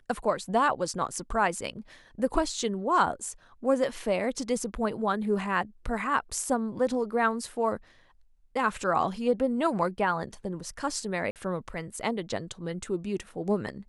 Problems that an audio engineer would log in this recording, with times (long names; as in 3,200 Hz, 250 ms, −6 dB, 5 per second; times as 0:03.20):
0:11.31–0:11.36: drop-out 48 ms